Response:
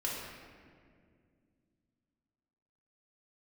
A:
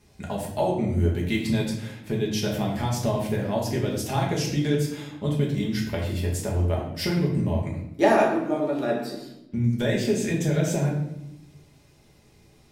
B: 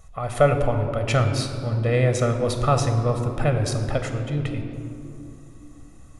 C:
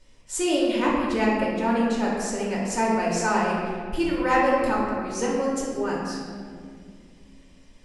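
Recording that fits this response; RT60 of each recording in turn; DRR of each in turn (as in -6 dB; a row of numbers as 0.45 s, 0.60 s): C; 0.80 s, no single decay rate, 2.1 s; -3.0 dB, 5.5 dB, -5.0 dB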